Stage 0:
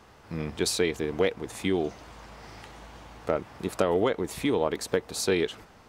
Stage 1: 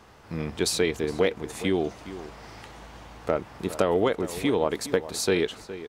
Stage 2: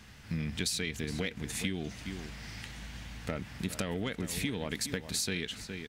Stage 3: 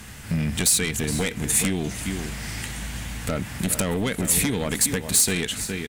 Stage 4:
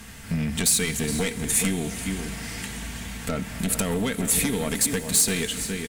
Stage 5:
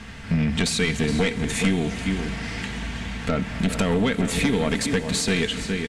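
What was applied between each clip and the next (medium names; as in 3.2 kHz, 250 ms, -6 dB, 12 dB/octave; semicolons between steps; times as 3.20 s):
echo from a far wall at 71 m, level -14 dB; trim +1.5 dB
in parallel at -7 dB: saturation -21 dBFS, distortion -10 dB; on the sum: high-order bell 640 Hz -13.5 dB 2.3 oct; compression 6:1, threshold -30 dBFS, peak gain reduction 9 dB
sine folder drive 8 dB, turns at -18 dBFS; resonant high shelf 6.6 kHz +7.5 dB, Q 1.5; delay 460 ms -19 dB
comb 4.4 ms, depth 37%; on a send at -12.5 dB: reverberation RT60 4.8 s, pre-delay 47 ms; on the sum: trim -2 dB
low-pass 4.1 kHz 12 dB/octave; trim +4.5 dB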